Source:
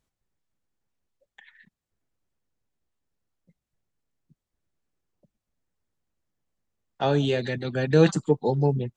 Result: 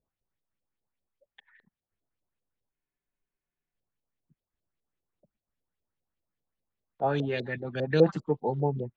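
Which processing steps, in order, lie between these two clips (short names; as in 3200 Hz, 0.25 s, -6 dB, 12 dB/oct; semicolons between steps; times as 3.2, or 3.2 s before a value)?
LFO low-pass saw up 5 Hz 440–4100 Hz; dynamic EQ 5600 Hz, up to +6 dB, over -46 dBFS, Q 0.73; spectral freeze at 2.75, 1.00 s; gain -7 dB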